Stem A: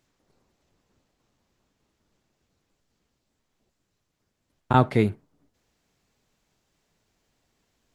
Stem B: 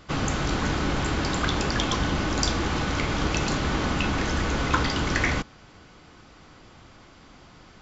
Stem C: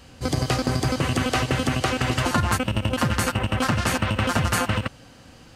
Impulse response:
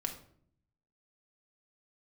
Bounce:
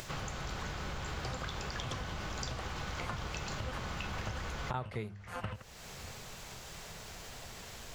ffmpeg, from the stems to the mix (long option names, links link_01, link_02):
-filter_complex "[0:a]bandreject=frequency=50:width_type=h:width=6,bandreject=frequency=100:width_type=h:width=6,bandreject=frequency=150:width_type=h:width=6,bandreject=frequency=200:width_type=h:width=6,acompressor=mode=upward:threshold=-24dB:ratio=2.5,volume=-0.5dB,asplit=2[link_01][link_02];[1:a]volume=2.5dB[link_03];[2:a]highshelf=frequency=2400:gain=-11.5,acompressor=threshold=-28dB:ratio=2.5,aeval=exprs='val(0)*pow(10,-27*(0.5-0.5*cos(2*PI*1.7*n/s))/20)':channel_layout=same,adelay=750,volume=-0.5dB[link_04];[link_02]apad=whole_len=344645[link_05];[link_03][link_05]sidechaincompress=threshold=-53dB:ratio=16:attack=42:release=659[link_06];[link_01][link_06][link_04]amix=inputs=3:normalize=0,equalizer=frequency=280:width=2:gain=-12,acompressor=threshold=-36dB:ratio=5"